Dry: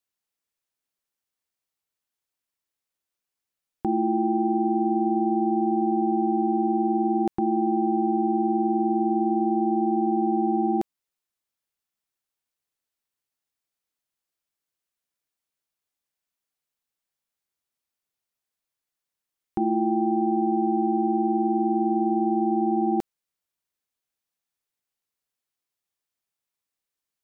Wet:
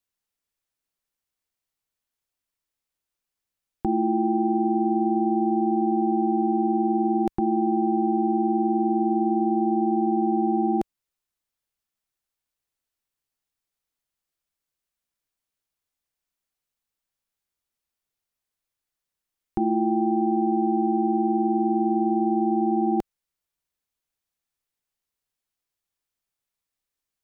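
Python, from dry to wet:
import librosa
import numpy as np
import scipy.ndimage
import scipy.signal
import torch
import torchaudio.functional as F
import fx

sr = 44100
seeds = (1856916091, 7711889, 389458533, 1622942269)

y = fx.low_shelf(x, sr, hz=74.0, db=11.0)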